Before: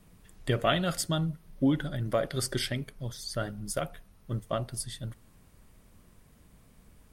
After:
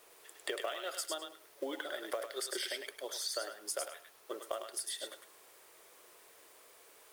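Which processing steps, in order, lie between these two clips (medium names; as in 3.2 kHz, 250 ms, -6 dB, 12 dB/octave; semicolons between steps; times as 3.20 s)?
steep high-pass 360 Hz 48 dB/octave; compression 12:1, threshold -40 dBFS, peak gain reduction 20 dB; companded quantiser 6-bit; on a send: thinning echo 103 ms, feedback 18%, high-pass 1.1 kHz, level -3.5 dB; on the sum: trim +4.5 dB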